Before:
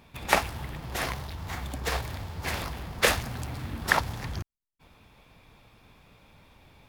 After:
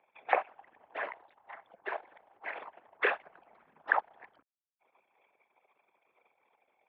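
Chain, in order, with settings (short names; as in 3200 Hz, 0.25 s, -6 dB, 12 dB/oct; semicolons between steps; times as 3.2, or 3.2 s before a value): formant sharpening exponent 2; mistuned SSB -71 Hz 530–3000 Hz; gain -4 dB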